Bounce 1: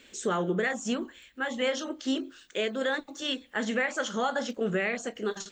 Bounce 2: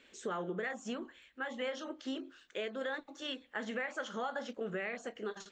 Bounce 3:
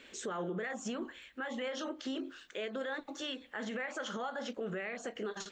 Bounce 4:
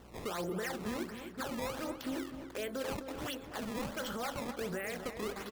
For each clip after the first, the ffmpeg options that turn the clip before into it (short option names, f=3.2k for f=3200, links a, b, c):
-af "lowpass=f=2k:p=1,lowshelf=f=370:g=-8.5,acompressor=threshold=-34dB:ratio=2,volume=-2.5dB"
-af "alimiter=level_in=13dB:limit=-24dB:level=0:latency=1:release=122,volume=-13dB,volume=7dB"
-filter_complex "[0:a]acrusher=samples=17:mix=1:aa=0.000001:lfo=1:lforange=27.2:lforate=1.4,aeval=exprs='val(0)+0.00126*(sin(2*PI*60*n/s)+sin(2*PI*2*60*n/s)/2+sin(2*PI*3*60*n/s)/3+sin(2*PI*4*60*n/s)/4+sin(2*PI*5*60*n/s)/5)':c=same,asplit=2[a][b];[b]adelay=256,lowpass=f=2.5k:p=1,volume=-9dB,asplit=2[c][d];[d]adelay=256,lowpass=f=2.5k:p=1,volume=0.53,asplit=2[e][f];[f]adelay=256,lowpass=f=2.5k:p=1,volume=0.53,asplit=2[g][h];[h]adelay=256,lowpass=f=2.5k:p=1,volume=0.53,asplit=2[i][j];[j]adelay=256,lowpass=f=2.5k:p=1,volume=0.53,asplit=2[k][l];[l]adelay=256,lowpass=f=2.5k:p=1,volume=0.53[m];[a][c][e][g][i][k][m]amix=inputs=7:normalize=0"